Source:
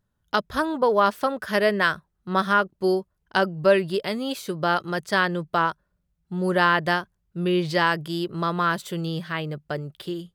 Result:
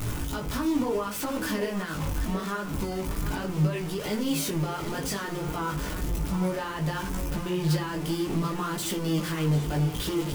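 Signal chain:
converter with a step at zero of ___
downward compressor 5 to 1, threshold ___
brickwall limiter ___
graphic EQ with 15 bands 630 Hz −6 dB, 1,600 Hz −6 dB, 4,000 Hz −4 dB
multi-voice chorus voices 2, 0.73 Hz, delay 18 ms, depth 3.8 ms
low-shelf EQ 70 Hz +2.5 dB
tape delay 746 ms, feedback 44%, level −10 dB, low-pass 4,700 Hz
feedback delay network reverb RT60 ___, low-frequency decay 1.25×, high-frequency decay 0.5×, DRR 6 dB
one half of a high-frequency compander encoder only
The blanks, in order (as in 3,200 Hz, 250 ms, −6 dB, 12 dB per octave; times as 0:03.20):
−23 dBFS, −20 dBFS, −18.5 dBFS, 0.43 s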